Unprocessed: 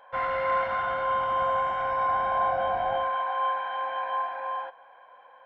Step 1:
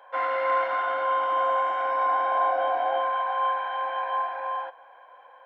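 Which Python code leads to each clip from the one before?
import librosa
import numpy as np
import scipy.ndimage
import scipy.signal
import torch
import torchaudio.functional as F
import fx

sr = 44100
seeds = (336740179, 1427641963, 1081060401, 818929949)

y = scipy.signal.sosfilt(scipy.signal.ellip(4, 1.0, 60, 280.0, 'highpass', fs=sr, output='sos'), x)
y = y * 10.0 ** (2.0 / 20.0)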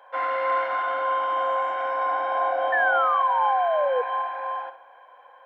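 y = fx.room_flutter(x, sr, wall_m=11.2, rt60_s=0.38)
y = fx.spec_paint(y, sr, seeds[0], shape='fall', start_s=2.72, length_s=1.3, low_hz=480.0, high_hz=1800.0, level_db=-23.0)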